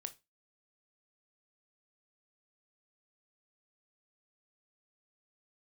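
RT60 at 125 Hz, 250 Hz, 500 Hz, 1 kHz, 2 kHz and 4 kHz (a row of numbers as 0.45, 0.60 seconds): 0.25, 0.25, 0.25, 0.25, 0.20, 0.25 seconds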